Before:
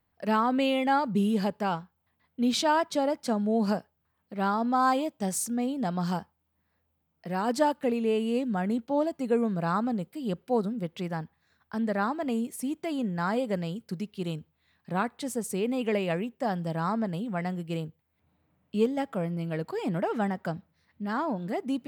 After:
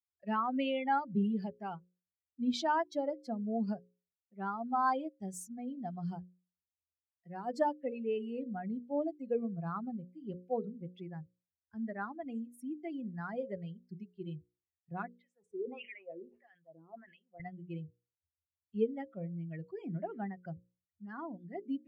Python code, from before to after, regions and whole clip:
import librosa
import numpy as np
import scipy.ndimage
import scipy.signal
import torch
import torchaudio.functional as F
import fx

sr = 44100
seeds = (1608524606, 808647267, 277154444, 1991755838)

y = fx.chain(x, sr, fx.block_float(bits=7),
    fx.lowpass(hz=9300.0, slope=12), at=(9.86, 10.64))
y = fx.chain(y, sr, fx.filter_lfo_bandpass(shape='sine', hz=1.6, low_hz=350.0, high_hz=2400.0, q=2.0),
    fx.sustainer(db_per_s=53.0), at=(15.1, 17.4))
y = fx.bin_expand(y, sr, power=2.0)
y = fx.lowpass(y, sr, hz=2700.0, slope=6)
y = fx.hum_notches(y, sr, base_hz=60, count=9)
y = y * librosa.db_to_amplitude(-3.0)